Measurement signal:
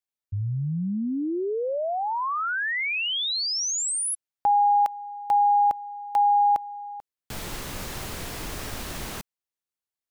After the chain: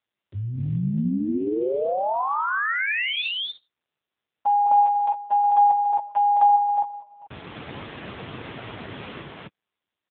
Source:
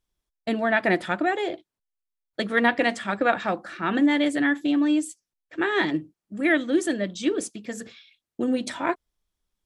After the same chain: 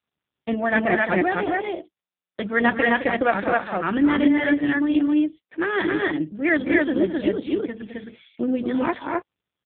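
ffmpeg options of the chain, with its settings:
-af "aecho=1:1:212.8|262.4:0.355|0.891,volume=1.19" -ar 8000 -c:a libopencore_amrnb -b:a 5900

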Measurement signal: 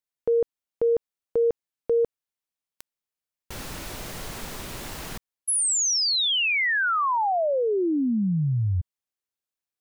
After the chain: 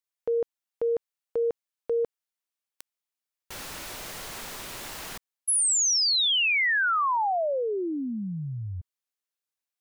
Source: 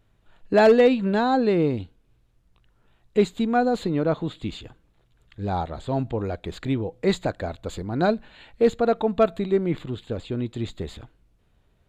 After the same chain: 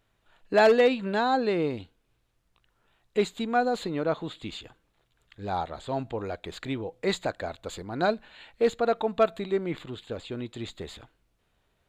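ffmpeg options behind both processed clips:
-af "lowshelf=f=370:g=-11"

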